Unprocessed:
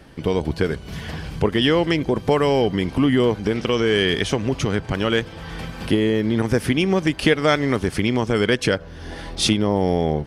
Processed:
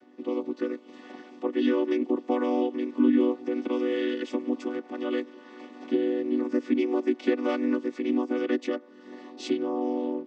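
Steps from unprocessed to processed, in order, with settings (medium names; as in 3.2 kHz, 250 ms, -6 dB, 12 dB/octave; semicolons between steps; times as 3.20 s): vocoder on a held chord minor triad, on B3; trim -6 dB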